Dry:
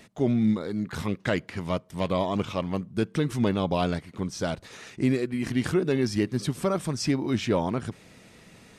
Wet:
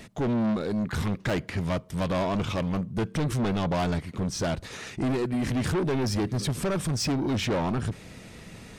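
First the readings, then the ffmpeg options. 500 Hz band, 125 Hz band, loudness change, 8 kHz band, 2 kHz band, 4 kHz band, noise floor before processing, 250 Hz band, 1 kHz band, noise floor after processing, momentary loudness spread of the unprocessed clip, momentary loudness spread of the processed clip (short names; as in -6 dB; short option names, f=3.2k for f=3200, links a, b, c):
-2.0 dB, +1.5 dB, -0.5 dB, +3.0 dB, 0.0 dB, +1.5 dB, -53 dBFS, -1.5 dB, +0.5 dB, -47 dBFS, 7 LU, 5 LU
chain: -af "lowshelf=f=110:g=9.5,asoftclip=type=tanh:threshold=-28dB,volume=5dB"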